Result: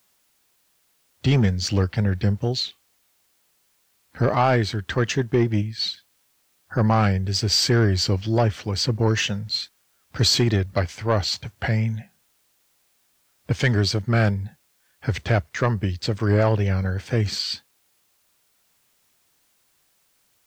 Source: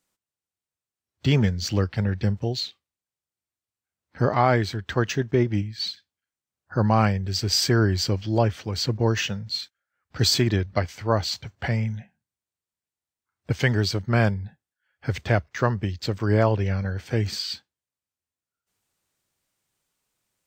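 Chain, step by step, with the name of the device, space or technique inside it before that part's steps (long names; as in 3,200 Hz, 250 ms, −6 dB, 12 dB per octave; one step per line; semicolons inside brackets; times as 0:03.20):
compact cassette (soft clipping −14 dBFS, distortion −15 dB; low-pass filter 12,000 Hz 12 dB per octave; tape wow and flutter; white noise bed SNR 42 dB)
level +3.5 dB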